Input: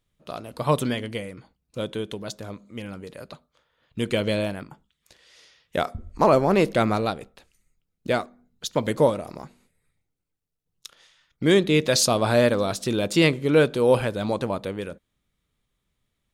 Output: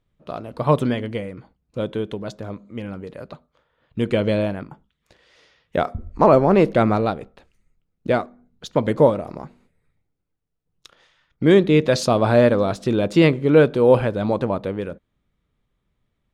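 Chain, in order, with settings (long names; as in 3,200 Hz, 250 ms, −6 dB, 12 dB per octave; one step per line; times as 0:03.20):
low-pass filter 1,400 Hz 6 dB per octave
level +5 dB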